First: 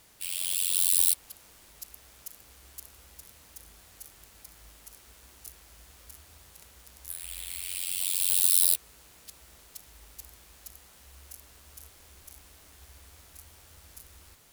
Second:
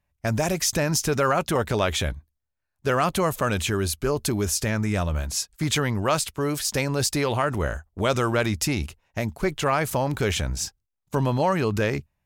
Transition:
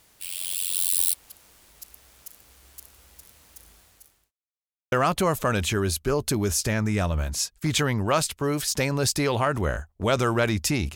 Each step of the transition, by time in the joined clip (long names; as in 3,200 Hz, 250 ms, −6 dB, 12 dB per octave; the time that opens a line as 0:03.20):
first
0:03.72–0:04.32: fade out linear
0:04.32–0:04.92: silence
0:04.92: continue with second from 0:02.89